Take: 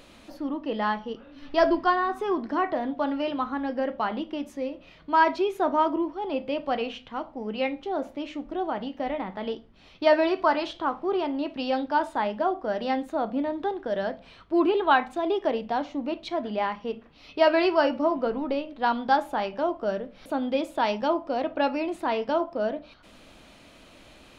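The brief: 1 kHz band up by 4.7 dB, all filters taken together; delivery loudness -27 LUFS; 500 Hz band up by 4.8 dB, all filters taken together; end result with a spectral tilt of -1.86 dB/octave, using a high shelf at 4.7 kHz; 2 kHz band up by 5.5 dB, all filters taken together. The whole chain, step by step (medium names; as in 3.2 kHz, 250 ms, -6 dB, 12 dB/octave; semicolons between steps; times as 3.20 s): peaking EQ 500 Hz +5 dB; peaking EQ 1 kHz +3 dB; peaking EQ 2 kHz +6.5 dB; treble shelf 4.7 kHz -4.5 dB; trim -4.5 dB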